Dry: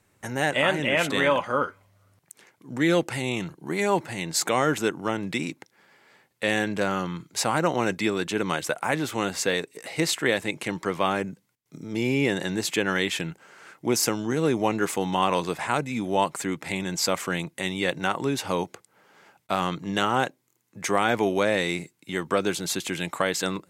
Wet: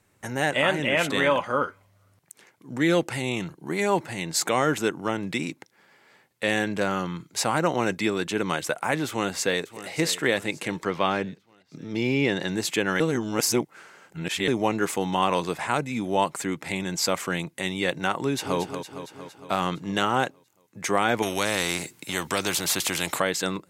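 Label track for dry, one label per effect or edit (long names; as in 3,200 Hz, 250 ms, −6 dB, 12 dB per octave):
9.070000	9.880000	delay throw 580 ms, feedback 50%, level −14.5 dB
10.850000	12.480000	high shelf with overshoot 6,400 Hz −8 dB, Q 1.5
13.000000	14.480000	reverse
18.180000	18.590000	delay throw 230 ms, feedback 65%, level −8.5 dB
21.220000	23.200000	every bin compressed towards the loudest bin 2 to 1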